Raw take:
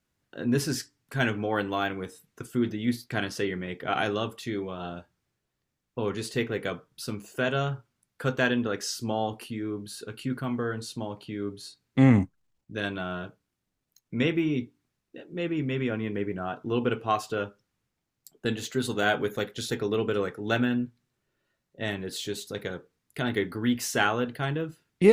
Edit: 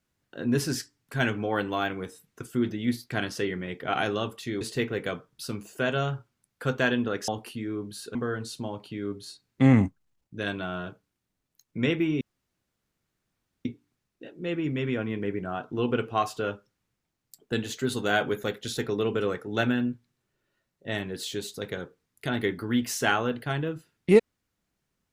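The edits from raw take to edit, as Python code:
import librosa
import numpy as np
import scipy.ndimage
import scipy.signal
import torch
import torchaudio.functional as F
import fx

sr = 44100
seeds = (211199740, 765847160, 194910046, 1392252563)

y = fx.edit(x, sr, fx.cut(start_s=4.61, length_s=1.59),
    fx.cut(start_s=8.87, length_s=0.36),
    fx.cut(start_s=10.1, length_s=0.42),
    fx.insert_room_tone(at_s=14.58, length_s=1.44), tone=tone)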